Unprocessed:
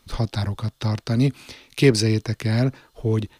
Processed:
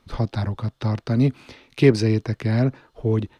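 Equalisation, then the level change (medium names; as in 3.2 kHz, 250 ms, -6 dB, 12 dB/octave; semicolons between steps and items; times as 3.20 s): low-pass 1.8 kHz 6 dB/octave; bass shelf 70 Hz -5 dB; +1.5 dB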